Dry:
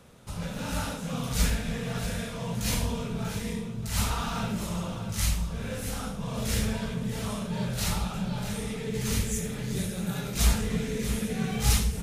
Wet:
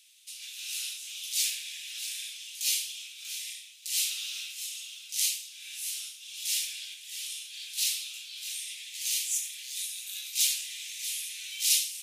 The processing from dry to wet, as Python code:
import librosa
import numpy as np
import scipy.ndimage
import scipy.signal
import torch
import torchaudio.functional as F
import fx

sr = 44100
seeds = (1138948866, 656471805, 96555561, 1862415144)

y = scipy.signal.sosfilt(scipy.signal.butter(6, 2600.0, 'highpass', fs=sr, output='sos'), x)
y = F.gain(torch.from_numpy(y), 5.0).numpy()